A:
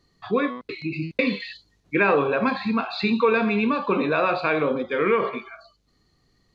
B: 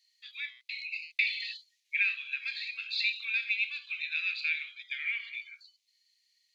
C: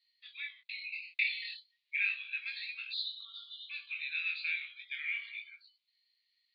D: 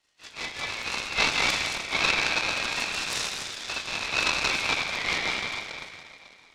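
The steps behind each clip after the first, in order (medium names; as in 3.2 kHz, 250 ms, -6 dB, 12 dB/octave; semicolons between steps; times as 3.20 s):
steep high-pass 2.1 kHz 48 dB/octave
elliptic band-pass 1–4.2 kHz, stop band 40 dB; chorus 0.35 Hz, delay 17 ms, depth 6.7 ms; spectral selection erased 2.93–3.70 s, 1.4–2.9 kHz
phase randomisation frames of 100 ms; reverberation RT60 3.5 s, pre-delay 151 ms, DRR -2 dB; delay time shaken by noise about 1.3 kHz, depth 0.055 ms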